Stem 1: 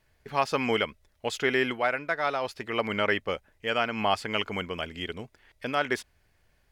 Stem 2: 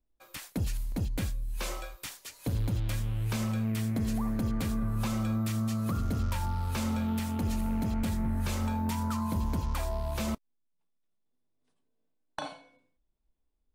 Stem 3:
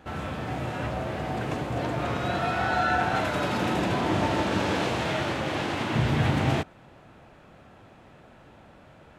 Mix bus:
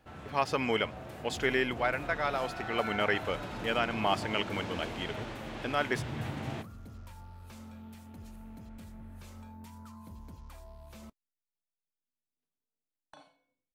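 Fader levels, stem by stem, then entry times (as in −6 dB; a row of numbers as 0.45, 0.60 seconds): −3.5, −17.5, −13.5 decibels; 0.00, 0.75, 0.00 seconds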